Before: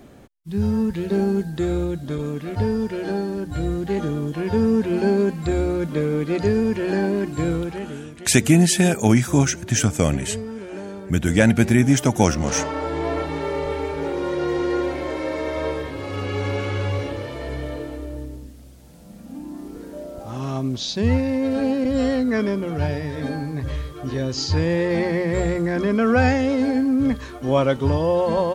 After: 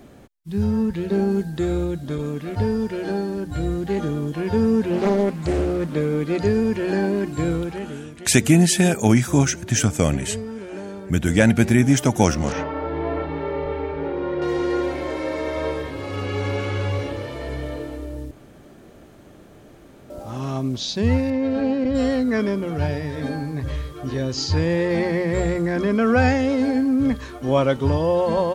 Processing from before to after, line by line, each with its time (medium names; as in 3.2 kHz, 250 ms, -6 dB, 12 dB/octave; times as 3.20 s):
0.64–1.31 s: treble shelf 5.2 kHz -4.5 dB
4.90–5.96 s: loudspeaker Doppler distortion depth 0.57 ms
12.52–14.42 s: distance through air 330 m
18.31–20.10 s: room tone
21.30–21.95 s: distance through air 120 m